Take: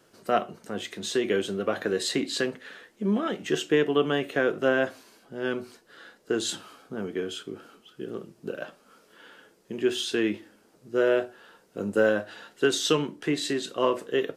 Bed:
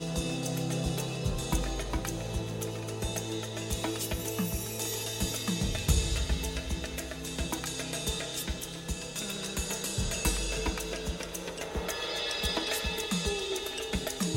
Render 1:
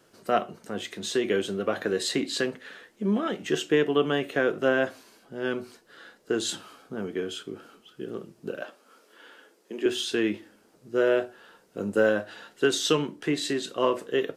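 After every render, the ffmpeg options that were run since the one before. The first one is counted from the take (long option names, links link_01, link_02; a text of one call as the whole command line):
ffmpeg -i in.wav -filter_complex "[0:a]asettb=1/sr,asplit=3[link_01][link_02][link_03];[link_01]atrim=end=8.624[link_04];[link_02]atrim=start=8.62:end=9.86,asetpts=PTS-STARTPTS,afade=type=in:duration=0.004:curve=qsin,afade=type=out:start_time=1.236:duration=0.004:curve=qsin,highpass=frequency=250:width=0.5412,highpass=frequency=250:width=1.3066[link_05];[link_03]atrim=start=9.856[link_06];[link_04][link_05]acrossfade=duration=0.004:curve1=hsin:curve2=qsin[link_07];[link_07][link_06]acrossfade=duration=0.004:curve1=qsin:curve2=hsin" out.wav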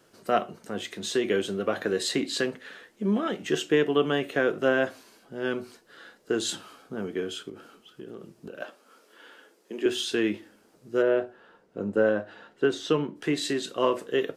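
ffmpeg -i in.wav -filter_complex "[0:a]asettb=1/sr,asplit=3[link_01][link_02][link_03];[link_01]atrim=end=7.494[link_04];[link_02]atrim=start=7.49:end=8.6,asetpts=PTS-STARTPTS,afade=type=in:duration=0.004:curve=qsin,afade=type=out:start_time=1.106:duration=0.004:curve=qsin,acompressor=threshold=-37dB:ratio=4:attack=3.2:release=140:knee=1:detection=peak[link_05];[link_03]atrim=start=8.596[link_06];[link_04][link_05]acrossfade=duration=0.004:curve1=hsin:curve2=qsin[link_07];[link_07][link_06]acrossfade=duration=0.004:curve1=qsin:curve2=hsin,asplit=3[link_08][link_09][link_10];[link_08]afade=type=out:start_time=11.01:duration=0.02[link_11];[link_09]lowpass=frequency=1400:poles=1,afade=type=in:start_time=11.01:duration=0.02,afade=type=out:start_time=13.15:duration=0.02[link_12];[link_10]afade=type=in:start_time=13.15:duration=0.02[link_13];[link_11][link_12][link_13]amix=inputs=3:normalize=0" out.wav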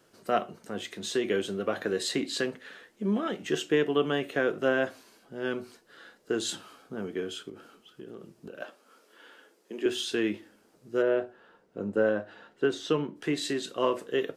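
ffmpeg -i in.wav -af "volume=-2.5dB" out.wav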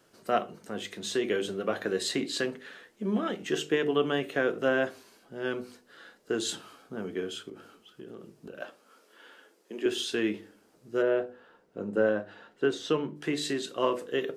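ffmpeg -i in.wav -af "bandreject=frequency=49.64:width_type=h:width=4,bandreject=frequency=99.28:width_type=h:width=4,bandreject=frequency=148.92:width_type=h:width=4,bandreject=frequency=198.56:width_type=h:width=4,bandreject=frequency=248.2:width_type=h:width=4,bandreject=frequency=297.84:width_type=h:width=4,bandreject=frequency=347.48:width_type=h:width=4,bandreject=frequency=397.12:width_type=h:width=4,bandreject=frequency=446.76:width_type=h:width=4,bandreject=frequency=496.4:width_type=h:width=4" out.wav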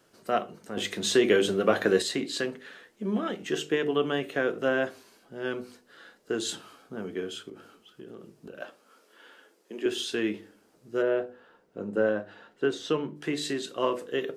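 ffmpeg -i in.wav -filter_complex "[0:a]asettb=1/sr,asplit=3[link_01][link_02][link_03];[link_01]atrim=end=0.774[link_04];[link_02]atrim=start=0.77:end=2.02,asetpts=PTS-STARTPTS,afade=type=in:duration=0.004:curve=qsin,afade=type=out:start_time=1.246:duration=0.004:curve=qsin,acontrast=89[link_05];[link_03]atrim=start=2.016[link_06];[link_04][link_05]acrossfade=duration=0.004:curve1=hsin:curve2=qsin[link_07];[link_07][link_06]acrossfade=duration=0.004:curve1=qsin:curve2=hsin" out.wav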